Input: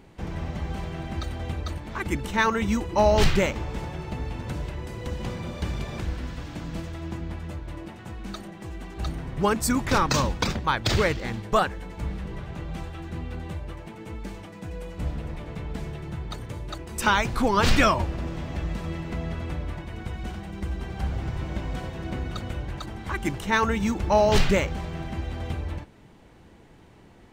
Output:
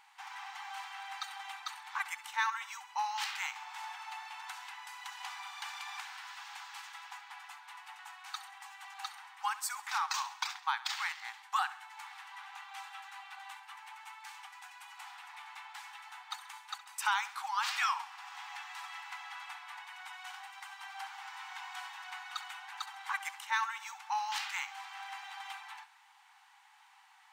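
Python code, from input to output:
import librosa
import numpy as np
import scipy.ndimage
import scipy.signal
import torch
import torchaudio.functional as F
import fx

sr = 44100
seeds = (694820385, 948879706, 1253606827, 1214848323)

y = fx.rider(x, sr, range_db=4, speed_s=0.5)
y = fx.brickwall_highpass(y, sr, low_hz=740.0)
y = fx.echo_feedback(y, sr, ms=67, feedback_pct=50, wet_db=-16)
y = y * librosa.db_to_amplitude(-5.5)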